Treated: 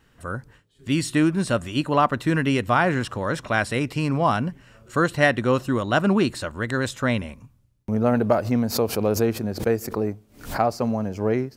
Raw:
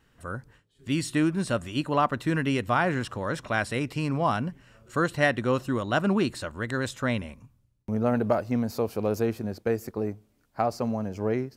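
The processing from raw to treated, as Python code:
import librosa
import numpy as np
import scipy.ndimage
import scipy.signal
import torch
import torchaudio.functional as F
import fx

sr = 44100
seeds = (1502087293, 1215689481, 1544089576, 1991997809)

y = fx.pre_swell(x, sr, db_per_s=130.0, at=(8.32, 10.62))
y = F.gain(torch.from_numpy(y), 4.5).numpy()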